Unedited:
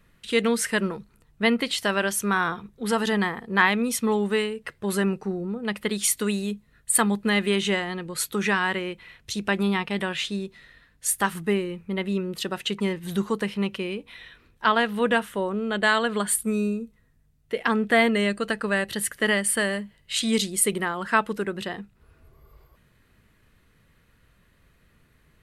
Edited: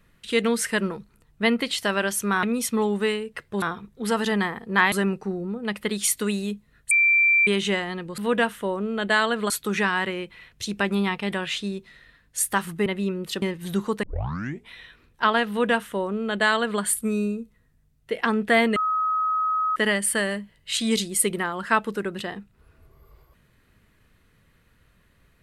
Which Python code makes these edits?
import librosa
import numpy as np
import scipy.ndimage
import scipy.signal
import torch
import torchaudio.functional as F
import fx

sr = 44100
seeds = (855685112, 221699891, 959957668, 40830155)

y = fx.edit(x, sr, fx.move(start_s=3.73, length_s=1.19, to_s=2.43),
    fx.bleep(start_s=6.91, length_s=0.56, hz=2350.0, db=-15.0),
    fx.cut(start_s=11.54, length_s=0.41),
    fx.cut(start_s=12.51, length_s=0.33),
    fx.tape_start(start_s=13.45, length_s=0.67),
    fx.duplicate(start_s=14.91, length_s=1.32, to_s=8.18),
    fx.bleep(start_s=18.18, length_s=1.0, hz=1270.0, db=-20.5), tone=tone)